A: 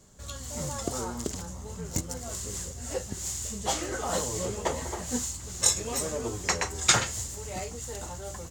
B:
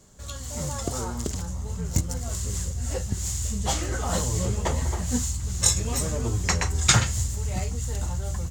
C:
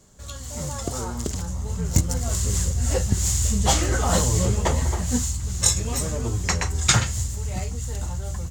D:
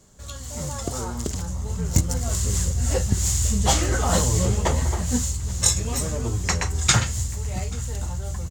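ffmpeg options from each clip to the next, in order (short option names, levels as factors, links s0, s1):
-af "asubboost=boost=4.5:cutoff=180,volume=1.26"
-af "dynaudnorm=f=330:g=11:m=2.99"
-af "aecho=1:1:835:0.0631"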